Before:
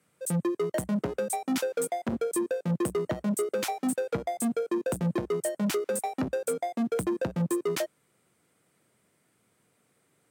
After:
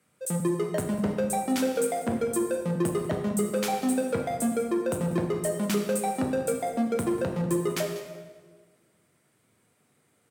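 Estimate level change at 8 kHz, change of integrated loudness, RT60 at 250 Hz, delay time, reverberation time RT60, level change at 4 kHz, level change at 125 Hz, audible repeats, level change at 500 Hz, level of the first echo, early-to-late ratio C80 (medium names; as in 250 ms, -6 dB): +1.5 dB, +2.0 dB, 1.6 s, 193 ms, 1.4 s, +1.5 dB, +1.5 dB, 1, +1.5 dB, -16.0 dB, 7.0 dB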